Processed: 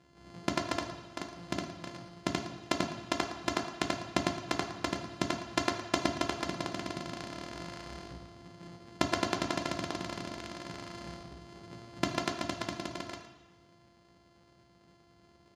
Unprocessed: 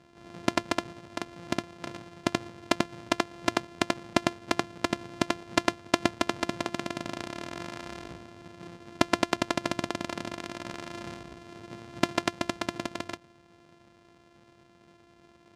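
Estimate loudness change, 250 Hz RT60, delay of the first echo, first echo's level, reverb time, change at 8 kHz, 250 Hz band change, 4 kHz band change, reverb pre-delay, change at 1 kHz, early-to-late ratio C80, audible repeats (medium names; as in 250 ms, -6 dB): -4.0 dB, 0.95 s, 113 ms, -13.5 dB, 1.1 s, -3.0 dB, -4.5 dB, -3.5 dB, 3 ms, -4.0 dB, 8.5 dB, 1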